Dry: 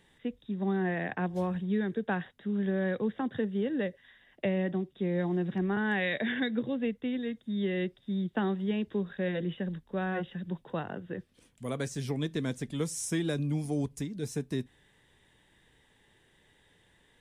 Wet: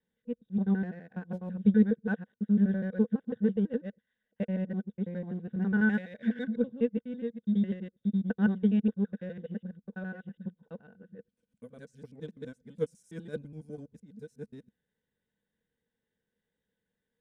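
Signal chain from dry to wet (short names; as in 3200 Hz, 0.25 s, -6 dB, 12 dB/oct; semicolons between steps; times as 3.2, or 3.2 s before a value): local time reversal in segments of 83 ms; bell 66 Hz +6.5 dB 0.35 oct; in parallel at -10 dB: hard clip -34.5 dBFS, distortion -7 dB; on the sum: small resonant body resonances 210/470/1500 Hz, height 16 dB, ringing for 50 ms; upward expander 2.5:1, over -27 dBFS; gain -5.5 dB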